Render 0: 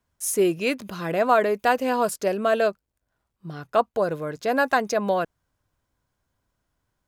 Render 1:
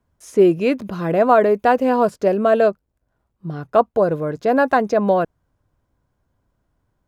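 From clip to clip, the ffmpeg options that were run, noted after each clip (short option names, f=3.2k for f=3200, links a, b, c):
-filter_complex "[0:a]acrossover=split=6100[a][b];[b]acompressor=threshold=-46dB:ratio=4:attack=1:release=60[c];[a][c]amix=inputs=2:normalize=0,tiltshelf=f=1.4k:g=6.5,volume=2dB"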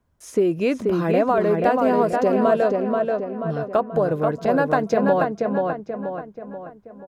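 -filter_complex "[0:a]acompressor=threshold=-16dB:ratio=6,asplit=2[a][b];[b]adelay=483,lowpass=f=3k:p=1,volume=-3dB,asplit=2[c][d];[d]adelay=483,lowpass=f=3k:p=1,volume=0.49,asplit=2[e][f];[f]adelay=483,lowpass=f=3k:p=1,volume=0.49,asplit=2[g][h];[h]adelay=483,lowpass=f=3k:p=1,volume=0.49,asplit=2[i][j];[j]adelay=483,lowpass=f=3k:p=1,volume=0.49,asplit=2[k][l];[l]adelay=483,lowpass=f=3k:p=1,volume=0.49[m];[c][e][g][i][k][m]amix=inputs=6:normalize=0[n];[a][n]amix=inputs=2:normalize=0"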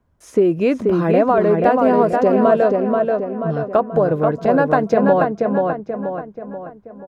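-af "highshelf=f=3.1k:g=-9,volume=4.5dB"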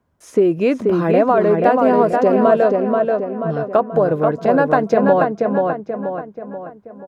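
-af "highpass=f=130:p=1,volume=1dB"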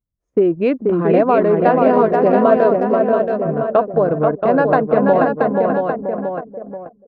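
-filter_complex "[0:a]anlmdn=2510,asplit=2[a][b];[b]aecho=0:1:678:0.531[c];[a][c]amix=inputs=2:normalize=0"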